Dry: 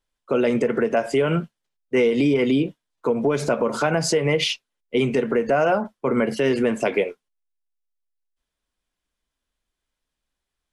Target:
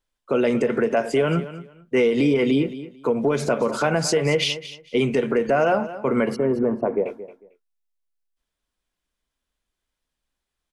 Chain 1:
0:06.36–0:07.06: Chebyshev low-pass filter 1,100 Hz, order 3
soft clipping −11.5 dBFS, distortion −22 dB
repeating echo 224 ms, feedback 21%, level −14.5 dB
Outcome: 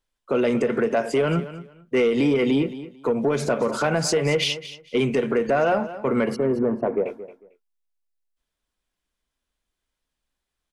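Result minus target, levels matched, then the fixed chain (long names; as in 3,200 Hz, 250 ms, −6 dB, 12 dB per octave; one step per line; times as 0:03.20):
soft clipping: distortion +17 dB
0:06.36–0:07.06: Chebyshev low-pass filter 1,100 Hz, order 3
soft clipping −2 dBFS, distortion −39 dB
repeating echo 224 ms, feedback 21%, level −14.5 dB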